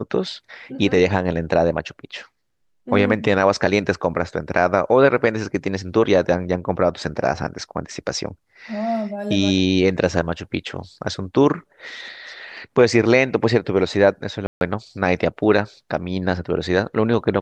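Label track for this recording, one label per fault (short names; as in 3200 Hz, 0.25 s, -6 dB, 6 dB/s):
14.470000	14.610000	gap 0.141 s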